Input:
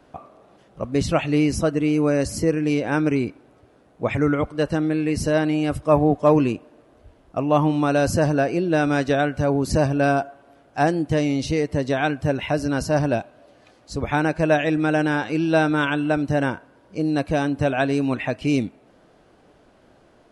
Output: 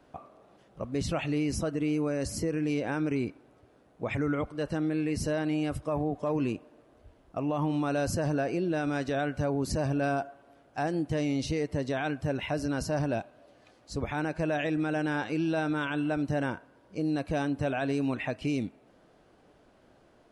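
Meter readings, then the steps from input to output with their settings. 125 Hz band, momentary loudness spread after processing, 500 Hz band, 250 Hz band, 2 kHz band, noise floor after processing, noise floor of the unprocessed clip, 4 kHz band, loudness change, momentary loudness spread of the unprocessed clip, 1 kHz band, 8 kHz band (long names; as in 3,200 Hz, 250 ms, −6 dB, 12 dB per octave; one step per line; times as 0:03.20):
−8.5 dB, 6 LU, −10.0 dB, −8.5 dB, −9.5 dB, −61 dBFS, −55 dBFS, −8.0 dB, −9.0 dB, 7 LU, −10.5 dB, −7.0 dB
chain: brickwall limiter −15.5 dBFS, peak gain reduction 9.5 dB
level −6 dB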